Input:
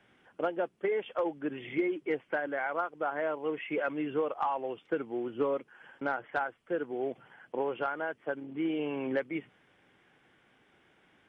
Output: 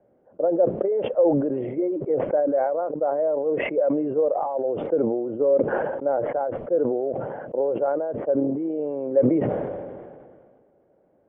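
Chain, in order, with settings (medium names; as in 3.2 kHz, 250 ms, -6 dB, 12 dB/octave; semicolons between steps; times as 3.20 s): resonant low-pass 570 Hz, resonance Q 4.9; decay stretcher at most 31 dB/s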